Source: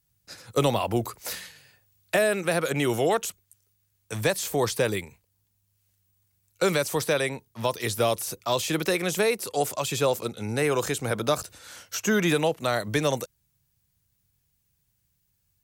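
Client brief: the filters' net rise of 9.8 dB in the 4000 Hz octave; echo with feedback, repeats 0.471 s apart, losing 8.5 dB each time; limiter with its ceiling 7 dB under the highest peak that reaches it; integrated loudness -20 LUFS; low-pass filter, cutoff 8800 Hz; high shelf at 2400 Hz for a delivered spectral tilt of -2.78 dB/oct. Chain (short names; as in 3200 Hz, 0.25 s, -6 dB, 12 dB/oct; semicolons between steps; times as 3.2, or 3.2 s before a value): LPF 8800 Hz; high shelf 2400 Hz +4.5 dB; bell 4000 Hz +8 dB; limiter -13 dBFS; feedback echo 0.471 s, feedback 38%, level -8.5 dB; gain +5 dB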